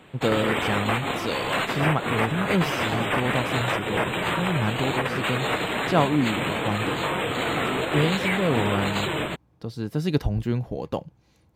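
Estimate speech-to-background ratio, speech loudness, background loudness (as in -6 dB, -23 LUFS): -2.0 dB, -28.0 LUFS, -26.0 LUFS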